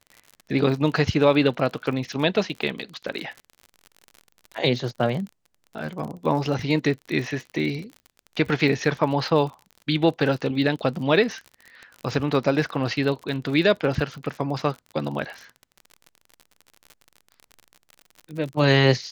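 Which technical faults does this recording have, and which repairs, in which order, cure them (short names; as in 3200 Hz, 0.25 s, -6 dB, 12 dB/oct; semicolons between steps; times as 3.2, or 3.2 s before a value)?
crackle 52/s -32 dBFS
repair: de-click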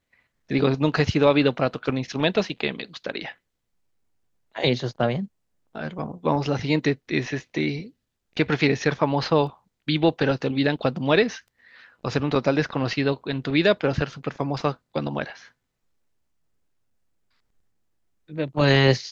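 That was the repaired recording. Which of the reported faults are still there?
none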